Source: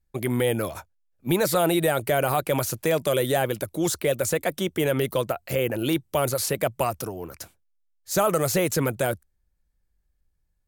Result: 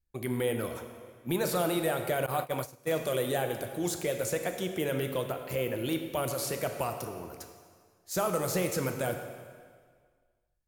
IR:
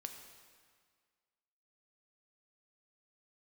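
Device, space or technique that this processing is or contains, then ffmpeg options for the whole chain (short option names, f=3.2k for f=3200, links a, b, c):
stairwell: -filter_complex "[1:a]atrim=start_sample=2205[a];[0:a][a]afir=irnorm=-1:irlink=0,asettb=1/sr,asplit=3[b][c][d];[b]atrim=end=2.264[e];[c]atrim=start=2.26:end=2.9,asetpts=PTS-STARTPTS,afade=t=in:d=0.004:c=qsin,afade=t=out:st=0.636:d=0.004:c=qsin,agate=range=-20dB:threshold=-27dB:ratio=16:detection=peak[f];[d]atrim=start=2.896[g];[e][f]acrossfade=d=0.004:c1=hsin:c2=qsin[h];[h][g]acrossfade=d=0.004:c1=qsin:c2=hsin,volume=-3.5dB"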